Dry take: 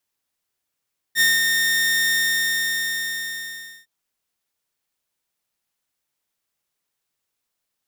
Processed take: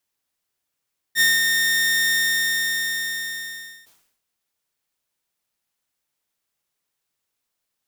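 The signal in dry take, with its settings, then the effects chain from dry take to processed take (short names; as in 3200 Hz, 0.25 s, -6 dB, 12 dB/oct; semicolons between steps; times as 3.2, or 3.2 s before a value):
ADSR saw 1830 Hz, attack 54 ms, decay 0.194 s, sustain -4 dB, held 0.97 s, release 1.74 s -11 dBFS
sustainer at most 78 dB/s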